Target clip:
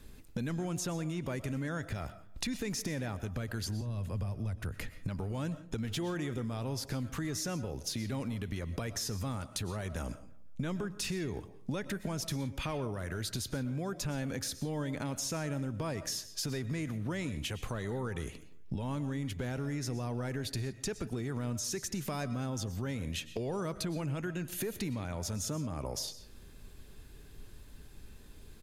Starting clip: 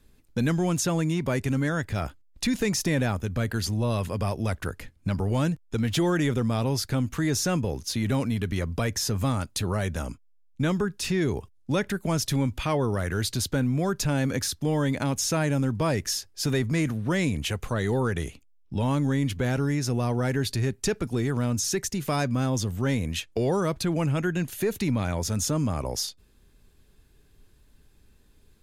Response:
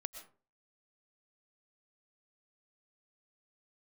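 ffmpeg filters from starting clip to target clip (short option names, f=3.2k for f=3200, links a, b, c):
-filter_complex "[0:a]asettb=1/sr,asplit=3[a][b][c];[a]atrim=end=3.814[d];[b]atrim=start=3.81:end=4.74,asetpts=PTS-STARTPTS,afade=t=in:d=0.004:c=qsin,afade=t=out:st=0.926:d=0.004:c=qsin,acrossover=split=180[e][f];[f]acompressor=threshold=-40dB:ratio=6[g];[e][g]amix=inputs=2:normalize=0[h];[c]atrim=start=4.736[i];[d][h]acrossfade=d=0.004:c1=hsin:c2=qsin[j];[j][i]acrossfade=d=0.004:c1=qsin:c2=hsin,alimiter=limit=-24dB:level=0:latency=1:release=359,acompressor=threshold=-42dB:ratio=4,asplit=2[k][l];[l]adelay=171,lowpass=f=4.3k:p=1,volume=-21.5dB,asplit=2[m][n];[n]adelay=171,lowpass=f=4.3k:p=1,volume=0.35,asplit=2[o][p];[p]adelay=171,lowpass=f=4.3k:p=1,volume=0.35[q];[k][m][o][q]amix=inputs=4:normalize=0,asplit=2[r][s];[1:a]atrim=start_sample=2205[t];[s][t]afir=irnorm=-1:irlink=0,volume=4dB[u];[r][u]amix=inputs=2:normalize=0"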